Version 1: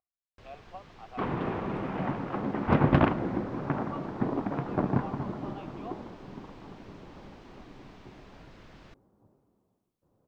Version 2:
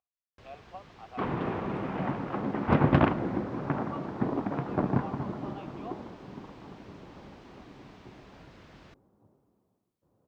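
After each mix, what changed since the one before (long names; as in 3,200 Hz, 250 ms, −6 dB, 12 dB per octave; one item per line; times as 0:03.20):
master: add high-pass filter 47 Hz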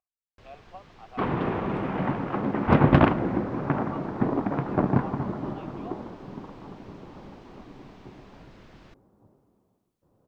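second sound +4.5 dB
master: remove high-pass filter 47 Hz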